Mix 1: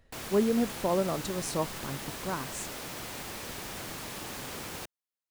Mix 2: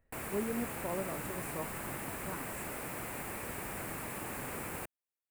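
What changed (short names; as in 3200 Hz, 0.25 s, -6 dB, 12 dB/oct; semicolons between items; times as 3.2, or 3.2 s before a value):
speech -10.5 dB; master: add band shelf 4500 Hz -13 dB 1.3 oct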